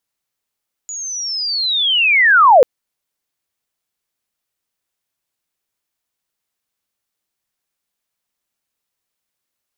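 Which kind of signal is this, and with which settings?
sweep linear 6.9 kHz -> 460 Hz -24.5 dBFS -> -3.5 dBFS 1.74 s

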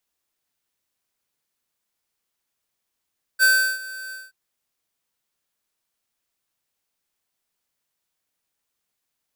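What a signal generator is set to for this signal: ADSR square 1.54 kHz, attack 40 ms, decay 353 ms, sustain -20 dB, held 0.73 s, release 197 ms -14.5 dBFS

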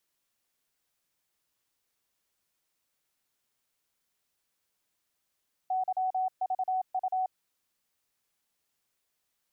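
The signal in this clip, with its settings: Morse "YVU" 27 wpm 748 Hz -26 dBFS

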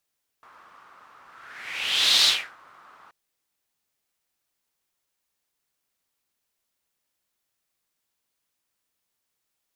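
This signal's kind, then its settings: whoosh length 2.68 s, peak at 1.82 s, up 1.09 s, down 0.33 s, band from 1.2 kHz, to 4 kHz, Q 4, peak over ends 34 dB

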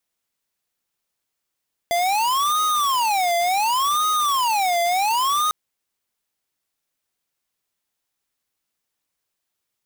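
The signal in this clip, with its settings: siren wail 687–1250 Hz 0.69 per s square -20 dBFS 3.60 s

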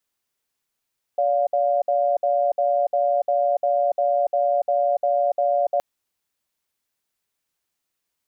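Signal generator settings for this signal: cadence 574 Hz, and 706 Hz, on 0.29 s, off 0.06 s, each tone -20 dBFS 4.62 s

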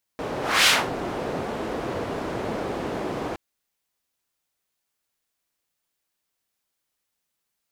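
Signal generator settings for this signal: whoosh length 3.17 s, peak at 0.48 s, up 0.29 s, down 0.24 s, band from 460 Hz, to 3.2 kHz, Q 0.89, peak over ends 13 dB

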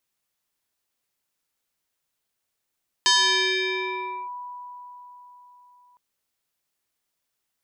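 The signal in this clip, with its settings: FM tone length 2.91 s, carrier 984 Hz, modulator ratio 1.38, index 4.1, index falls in 1.23 s linear, decay 4.32 s, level -14.5 dB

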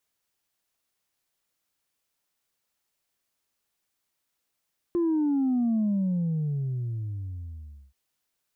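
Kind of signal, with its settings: sub drop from 350 Hz, over 2.98 s, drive 0.5 dB, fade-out 2.17 s, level -22 dB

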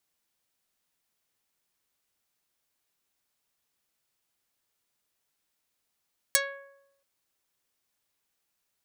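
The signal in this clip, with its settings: plucked string C#5, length 0.68 s, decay 0.87 s, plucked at 0.44, dark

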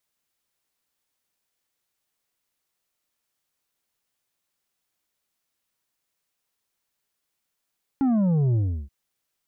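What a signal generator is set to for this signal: sub drop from 280 Hz, over 0.88 s, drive 6.5 dB, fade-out 0.34 s, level -19 dB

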